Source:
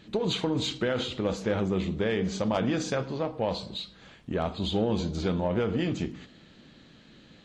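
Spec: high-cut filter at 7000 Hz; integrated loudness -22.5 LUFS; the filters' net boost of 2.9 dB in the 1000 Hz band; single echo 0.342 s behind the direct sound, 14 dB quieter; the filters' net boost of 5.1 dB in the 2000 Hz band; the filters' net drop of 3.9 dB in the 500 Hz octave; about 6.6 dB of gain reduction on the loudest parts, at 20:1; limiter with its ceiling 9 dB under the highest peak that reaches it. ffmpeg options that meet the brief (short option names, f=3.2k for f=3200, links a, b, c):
-af "lowpass=7k,equalizer=f=500:t=o:g=-6,equalizer=f=1k:t=o:g=4.5,equalizer=f=2k:t=o:g=5.5,acompressor=threshold=-30dB:ratio=20,alimiter=level_in=5.5dB:limit=-24dB:level=0:latency=1,volume=-5.5dB,aecho=1:1:342:0.2,volume=16dB"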